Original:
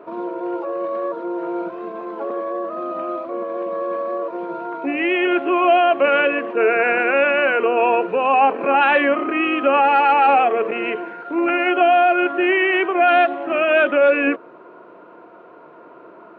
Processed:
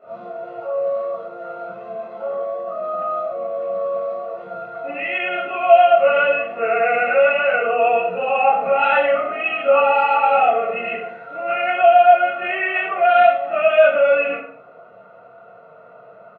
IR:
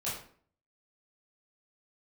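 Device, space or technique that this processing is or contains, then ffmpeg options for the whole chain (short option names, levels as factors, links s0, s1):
microphone above a desk: -filter_complex "[0:a]aecho=1:1:1.5:0.88[s0];[1:a]atrim=start_sample=2205[s1];[s0][s1]afir=irnorm=-1:irlink=0,volume=0.398"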